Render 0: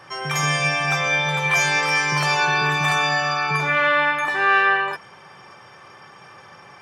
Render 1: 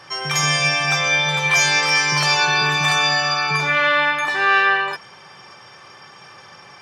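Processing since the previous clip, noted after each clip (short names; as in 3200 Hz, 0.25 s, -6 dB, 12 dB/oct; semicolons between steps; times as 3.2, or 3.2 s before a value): bell 4800 Hz +8.5 dB 1.4 oct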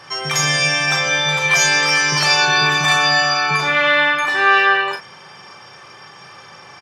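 doubler 38 ms -7 dB; gain +2 dB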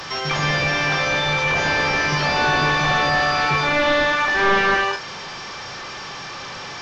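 delta modulation 32 kbps, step -26.5 dBFS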